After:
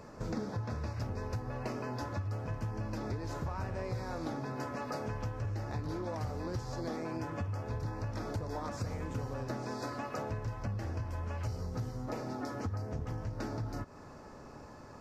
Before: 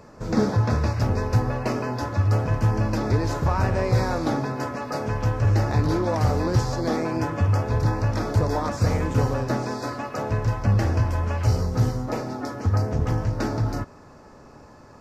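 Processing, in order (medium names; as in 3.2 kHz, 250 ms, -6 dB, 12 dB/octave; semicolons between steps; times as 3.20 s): compression 6:1, threshold -32 dBFS, peak gain reduction 16 dB; trim -3 dB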